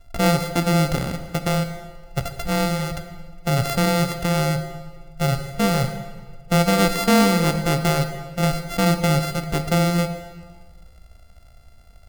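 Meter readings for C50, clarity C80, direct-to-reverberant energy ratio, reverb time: 9.0 dB, 10.5 dB, 7.5 dB, 1.5 s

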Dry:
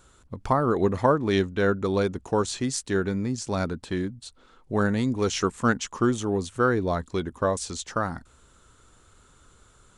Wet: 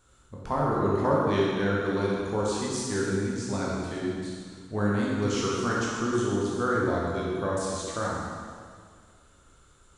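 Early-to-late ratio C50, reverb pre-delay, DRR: -2.0 dB, 6 ms, -5.5 dB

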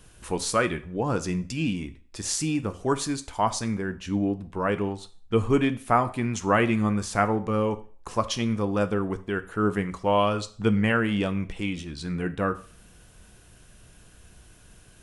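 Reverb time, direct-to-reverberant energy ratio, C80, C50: 0.45 s, 10.5 dB, 21.0 dB, 16.5 dB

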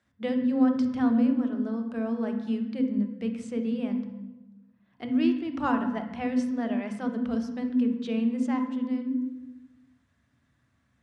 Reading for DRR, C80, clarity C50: 5.5 dB, 9.5 dB, 7.0 dB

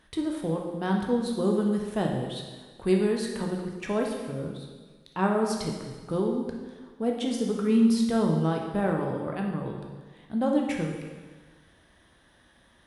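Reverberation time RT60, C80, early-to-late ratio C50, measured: 1.4 s, 5.5 dB, 3.5 dB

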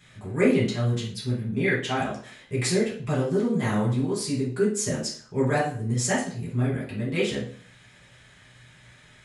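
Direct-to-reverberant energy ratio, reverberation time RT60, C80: -8.0 dB, 0.50 s, 11.0 dB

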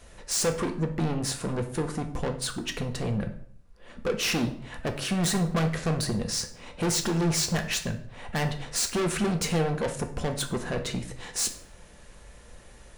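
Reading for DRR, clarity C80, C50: 5.0 dB, 15.0 dB, 11.0 dB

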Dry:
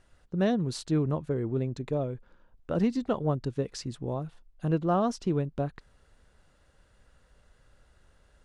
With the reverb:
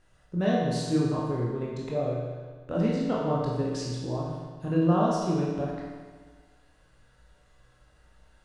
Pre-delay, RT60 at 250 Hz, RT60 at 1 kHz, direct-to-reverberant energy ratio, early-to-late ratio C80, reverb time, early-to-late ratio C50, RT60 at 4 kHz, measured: 17 ms, 1.5 s, 1.5 s, -5.0 dB, 1.5 dB, 1.5 s, -0.5 dB, 1.3 s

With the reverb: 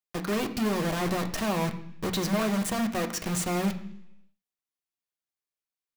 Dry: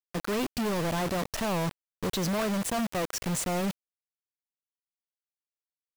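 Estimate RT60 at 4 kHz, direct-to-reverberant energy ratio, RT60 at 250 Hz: 0.90 s, 4.0 dB, 0.90 s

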